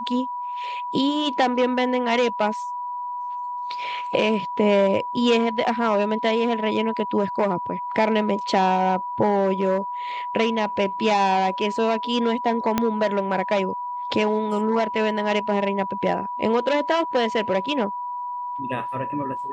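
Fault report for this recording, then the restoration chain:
whistle 980 Hz −27 dBFS
0:12.78: click −6 dBFS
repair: click removal
notch filter 980 Hz, Q 30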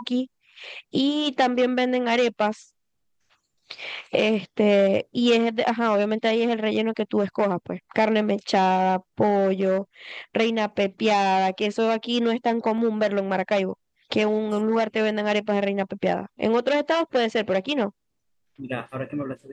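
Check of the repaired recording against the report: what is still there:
0:12.78: click

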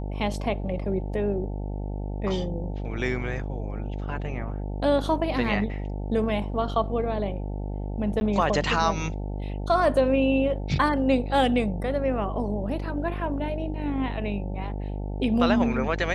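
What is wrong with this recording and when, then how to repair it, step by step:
mains buzz 50 Hz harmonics 18 −31 dBFS
0:08.20–0:08.21: drop-out 10 ms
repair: hum removal 50 Hz, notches 18
repair the gap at 0:08.20, 10 ms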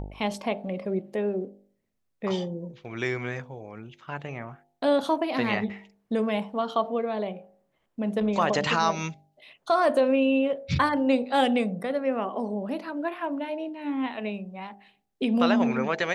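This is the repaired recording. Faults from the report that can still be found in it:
none of them is left

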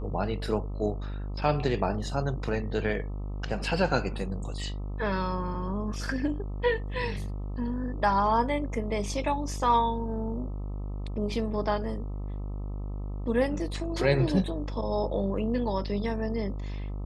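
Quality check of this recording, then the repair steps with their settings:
mains buzz 50 Hz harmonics 26 −34 dBFS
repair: hum removal 50 Hz, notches 26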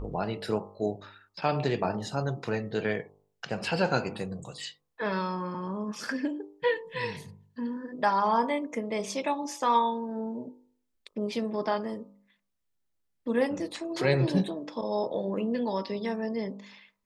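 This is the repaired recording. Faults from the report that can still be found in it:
none of them is left

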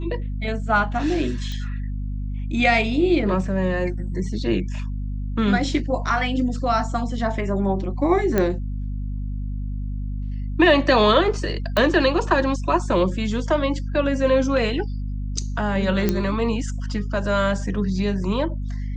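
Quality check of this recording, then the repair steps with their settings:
mains hum 50 Hz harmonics 5 −27 dBFS
0:01.52: click −19 dBFS
0:08.38: click −8 dBFS
0:11.77: click −8 dBFS
0:16.09: click −7 dBFS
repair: click removal
hum removal 50 Hz, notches 5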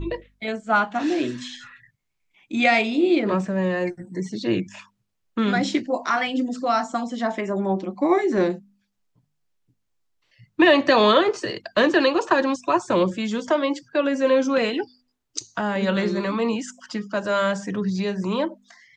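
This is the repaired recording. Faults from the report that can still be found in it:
none of them is left

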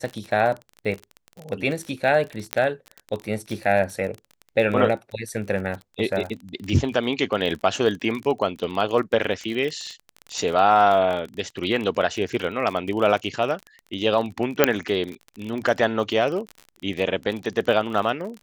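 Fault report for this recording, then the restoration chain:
surface crackle 33 per second −28 dBFS
0:02.53: click −5 dBFS
0:14.64: click 0 dBFS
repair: click removal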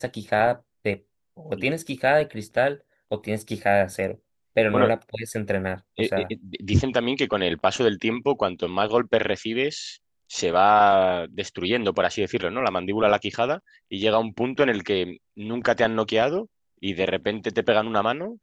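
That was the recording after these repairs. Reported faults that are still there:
none of them is left

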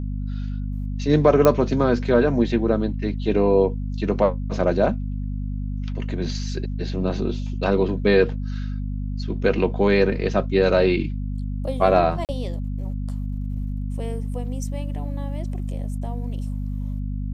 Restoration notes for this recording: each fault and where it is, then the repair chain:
mains hum 50 Hz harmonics 5 −27 dBFS
0:01.45: click −4 dBFS
0:12.25–0:12.29: drop-out 38 ms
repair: click removal
hum removal 50 Hz, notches 5
repair the gap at 0:12.25, 38 ms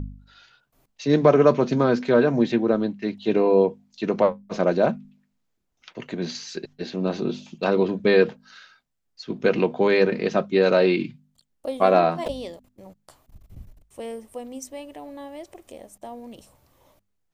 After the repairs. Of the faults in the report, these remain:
none of them is left

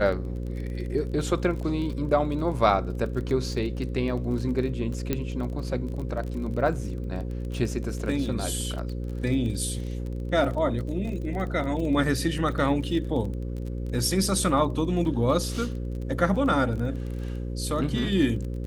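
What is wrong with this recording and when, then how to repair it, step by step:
mains buzz 60 Hz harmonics 9 −31 dBFS
surface crackle 30 per second −33 dBFS
0:05.13: click −12 dBFS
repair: click removal
hum removal 60 Hz, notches 9

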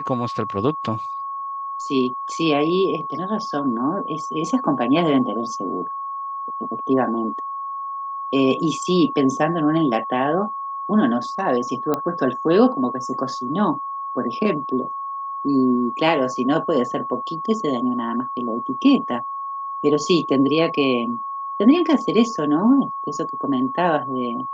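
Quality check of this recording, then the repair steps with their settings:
whistle 1,100 Hz −26 dBFS
0:11.94: click −9 dBFS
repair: click removal
notch filter 1,100 Hz, Q 30

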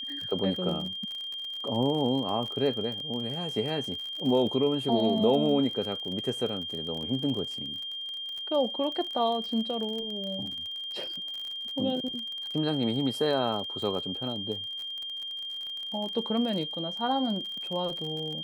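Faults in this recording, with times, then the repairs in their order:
surface crackle 39 per second −34 dBFS
whistle 3,200 Hz −34 dBFS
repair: click removal
notch filter 3,200 Hz, Q 30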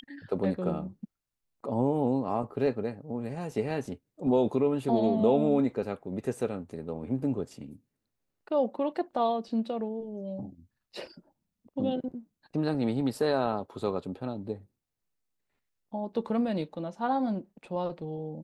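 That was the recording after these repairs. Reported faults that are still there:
none of them is left

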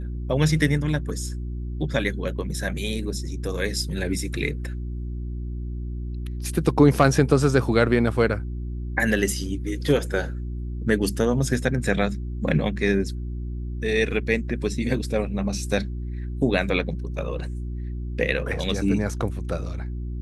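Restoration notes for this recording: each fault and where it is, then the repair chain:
mains hum 60 Hz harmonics 6 −30 dBFS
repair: hum removal 60 Hz, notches 6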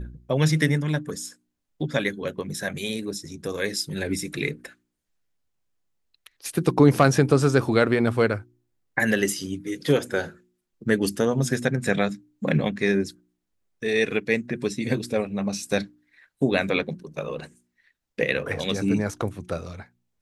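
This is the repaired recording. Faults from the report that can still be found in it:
none of them is left

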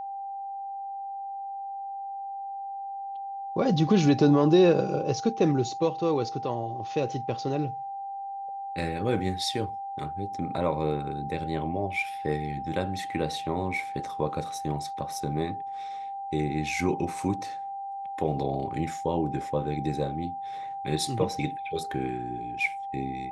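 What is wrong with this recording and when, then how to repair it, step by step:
whistle 790 Hz −33 dBFS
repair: notch filter 790 Hz, Q 30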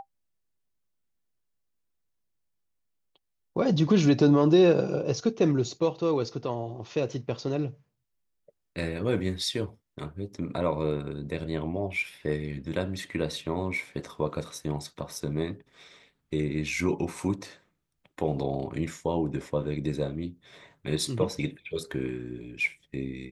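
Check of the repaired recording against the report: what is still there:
none of them is left

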